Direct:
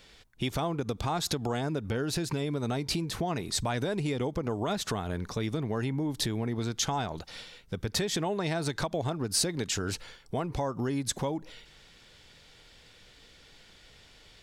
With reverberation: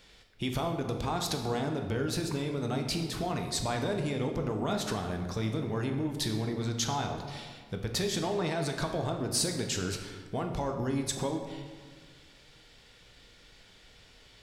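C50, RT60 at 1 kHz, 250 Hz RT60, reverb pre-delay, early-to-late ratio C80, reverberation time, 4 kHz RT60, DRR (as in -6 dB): 6.0 dB, 1.5 s, 1.9 s, 9 ms, 7.5 dB, 1.6 s, 1.0 s, 3.5 dB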